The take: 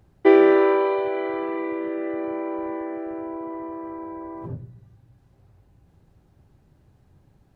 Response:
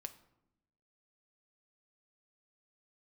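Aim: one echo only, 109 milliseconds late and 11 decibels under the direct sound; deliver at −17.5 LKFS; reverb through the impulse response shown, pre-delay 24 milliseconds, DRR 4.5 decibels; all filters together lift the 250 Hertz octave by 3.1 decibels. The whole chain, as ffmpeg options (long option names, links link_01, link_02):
-filter_complex "[0:a]equalizer=frequency=250:width_type=o:gain=5.5,aecho=1:1:109:0.282,asplit=2[link_01][link_02];[1:a]atrim=start_sample=2205,adelay=24[link_03];[link_02][link_03]afir=irnorm=-1:irlink=0,volume=-0.5dB[link_04];[link_01][link_04]amix=inputs=2:normalize=0,volume=2dB"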